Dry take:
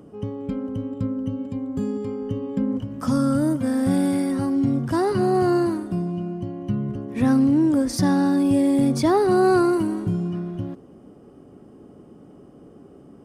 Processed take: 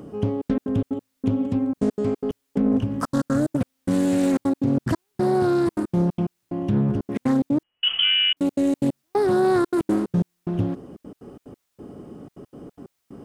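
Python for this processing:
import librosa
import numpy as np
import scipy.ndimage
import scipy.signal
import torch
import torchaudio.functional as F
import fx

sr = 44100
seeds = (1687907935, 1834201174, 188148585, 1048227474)

p1 = fx.over_compress(x, sr, threshold_db=-24.0, ratio=-0.5)
p2 = x + (p1 * librosa.db_to_amplitude(1.5))
p3 = fx.step_gate(p2, sr, bpm=182, pattern='xxxxx.x.xx.x...x', floor_db=-60.0, edge_ms=4.5)
p4 = fx.quant_dither(p3, sr, seeds[0], bits=12, dither='triangular')
p5 = fx.freq_invert(p4, sr, carrier_hz=3200, at=(7.63, 8.37))
p6 = fx.doppler_dist(p5, sr, depth_ms=0.4)
y = p6 * librosa.db_to_amplitude(-3.0)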